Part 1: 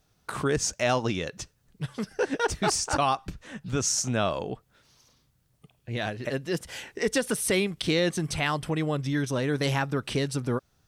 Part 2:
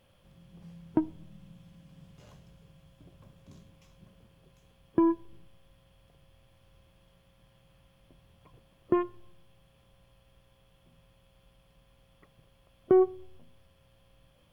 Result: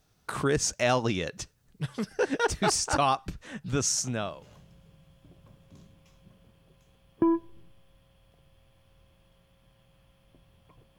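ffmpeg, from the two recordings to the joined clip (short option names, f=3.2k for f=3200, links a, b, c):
-filter_complex "[0:a]apad=whole_dur=10.98,atrim=end=10.98,atrim=end=4.46,asetpts=PTS-STARTPTS[a];[1:a]atrim=start=1.44:end=8.74,asetpts=PTS-STARTPTS[b];[a][b]acrossfade=d=0.78:c1=qsin:c2=qsin"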